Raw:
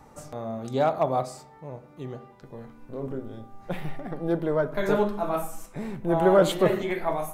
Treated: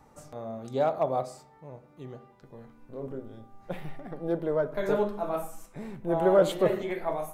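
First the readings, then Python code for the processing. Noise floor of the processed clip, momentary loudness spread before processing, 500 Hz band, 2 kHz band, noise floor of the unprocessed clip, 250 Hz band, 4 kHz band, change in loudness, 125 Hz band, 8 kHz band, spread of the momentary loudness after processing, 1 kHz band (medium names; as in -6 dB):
-57 dBFS, 21 LU, -2.0 dB, -5.5 dB, -51 dBFS, -4.5 dB, -6.0 dB, -2.5 dB, -6.0 dB, no reading, 22 LU, -4.5 dB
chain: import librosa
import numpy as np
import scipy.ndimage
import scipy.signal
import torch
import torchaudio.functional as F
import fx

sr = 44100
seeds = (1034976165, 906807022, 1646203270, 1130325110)

y = fx.dynamic_eq(x, sr, hz=520.0, q=1.5, threshold_db=-37.0, ratio=4.0, max_db=5)
y = y * 10.0 ** (-6.0 / 20.0)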